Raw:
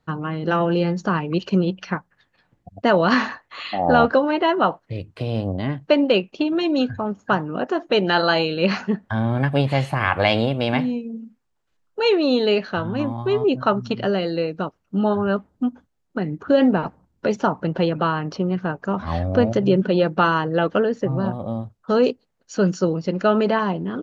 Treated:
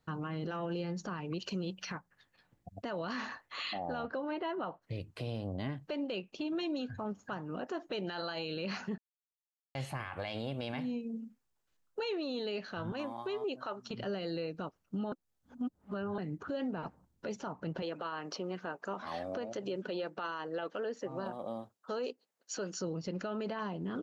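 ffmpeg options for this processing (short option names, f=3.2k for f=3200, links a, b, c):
-filter_complex "[0:a]asettb=1/sr,asplit=3[a][b][c];[a]atrim=end=1.404[d];[b]atrim=start=1.4:end=1.95,asetpts=PTS-STARTPTS,afade=t=in:d=0.004:c=qsin,afade=t=out:st=0.546:d=0.004:c=qsin,highshelf=f=3.5k:g=8[e];[c]atrim=start=1.946[f];[d][e]acrossfade=d=0.004:c1=hsin:c2=qsin[g];[g][f]acrossfade=d=0.004:c1=qsin:c2=hsin,asettb=1/sr,asplit=3[h][i][j];[h]atrim=end=4.034[k];[i]atrim=start=4.03:end=4.82,asetpts=PTS-STARTPTS,afade=t=in:d=0.004:c=qsin,afade=t=out:st=0.786:d=0.004:c=qsin,highshelf=f=4.4k:g=-11[l];[j]atrim=start=4.816[m];[k][l]acrossfade=d=0.004:c1=hsin:c2=qsin[n];[n][m]acrossfade=d=0.004:c1=qsin:c2=hsin,asettb=1/sr,asplit=3[o][p][q];[o]atrim=end=12.924[r];[p]atrim=start=12.92:end=13.91,asetpts=PTS-STARTPTS,afade=t=in:d=0.004:c=qsin,afade=t=out:st=0.986:d=0.004:c=qsin,highpass=390[s];[q]atrim=start=13.906[t];[r][s]acrossfade=d=0.004:c1=hsin:c2=qsin[u];[u][t]acrossfade=d=0.004:c1=qsin:c2=hsin,asettb=1/sr,asplit=3[v][w][x];[v]atrim=end=17.824[y];[w]atrim=start=17.82:end=22.81,asetpts=PTS-STARTPTS,afade=t=in:d=0.004:c=qsin,afade=t=out:st=4.986:d=0.004:c=qsin,highpass=340[z];[x]atrim=start=22.806[aa];[y][z]acrossfade=d=0.004:c1=hsin:c2=qsin[ab];[ab][aa]acrossfade=d=0.004:c1=qsin:c2=hsin,asplit=5[ac][ad][ae][af][ag];[ac]atrim=end=8.98,asetpts=PTS-STARTPTS,afade=t=out:st=8.976:d=0.004:c=hsin[ah];[ad]atrim=start=8.98:end=9.75,asetpts=PTS-STARTPTS,volume=0[ai];[ae]atrim=start=9.75:end=15.122,asetpts=PTS-STARTPTS,afade=t=in:d=0.004:c=hsin[aj];[af]atrim=start=15.118:end=16.182,asetpts=PTS-STARTPTS,areverse[ak];[ag]atrim=start=16.178[al];[ah][ai][aj]concat=n=3:v=0:a=1[am];[am][ak]acrossfade=d=0.004:c1=hsin:c2=hsin[an];[an][al]acrossfade=d=0.004:c1=hsin:c2=hsin,acompressor=threshold=-26dB:ratio=4,highshelf=f=5.1k:g=9,alimiter=limit=-21.5dB:level=0:latency=1:release=15,volume=-7.5dB"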